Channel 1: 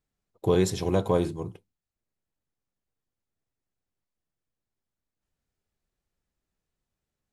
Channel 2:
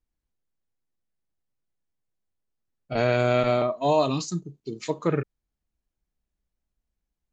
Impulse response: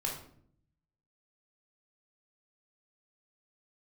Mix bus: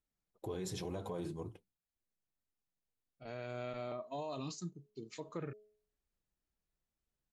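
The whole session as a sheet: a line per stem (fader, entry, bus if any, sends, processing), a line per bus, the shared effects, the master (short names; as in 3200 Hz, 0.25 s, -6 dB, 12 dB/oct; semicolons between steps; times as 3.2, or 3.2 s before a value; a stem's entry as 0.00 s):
-4.0 dB, 0.00 s, no send, flange 2 Hz, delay 2.6 ms, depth 4.3 ms, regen -38%
3.4 s -22.5 dB -> 4.14 s -13.5 dB, 0.30 s, no send, de-hum 211.8 Hz, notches 3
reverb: off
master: limiter -32.5 dBFS, peak gain reduction 13.5 dB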